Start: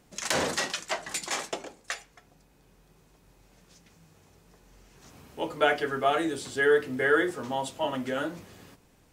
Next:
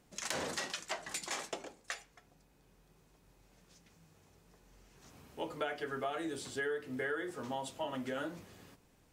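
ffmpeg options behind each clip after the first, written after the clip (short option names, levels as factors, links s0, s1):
-af "acompressor=threshold=0.0398:ratio=6,volume=0.501"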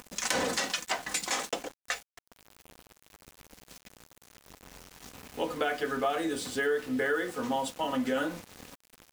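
-af "acompressor=mode=upward:threshold=0.00447:ratio=2.5,aecho=1:1:4:0.47,aeval=exprs='val(0)*gte(abs(val(0)),0.00335)':c=same,volume=2.37"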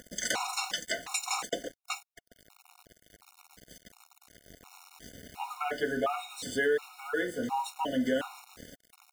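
-af "afftfilt=real='re*gt(sin(2*PI*1.4*pts/sr)*(1-2*mod(floor(b*sr/1024/730),2)),0)':imag='im*gt(sin(2*PI*1.4*pts/sr)*(1-2*mod(floor(b*sr/1024/730),2)),0)':win_size=1024:overlap=0.75,volume=1.19"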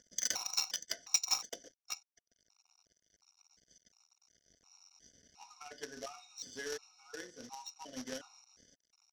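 -af "acrusher=bits=3:mode=log:mix=0:aa=0.000001,lowpass=f=5700:t=q:w=14,aeval=exprs='0.531*(cos(1*acos(clip(val(0)/0.531,-1,1)))-cos(1*PI/2))+0.0473*(cos(3*acos(clip(val(0)/0.531,-1,1)))-cos(3*PI/2))+0.0668*(cos(5*acos(clip(val(0)/0.531,-1,1)))-cos(5*PI/2))+0.0841*(cos(7*acos(clip(val(0)/0.531,-1,1)))-cos(7*PI/2))':c=same,volume=0.376"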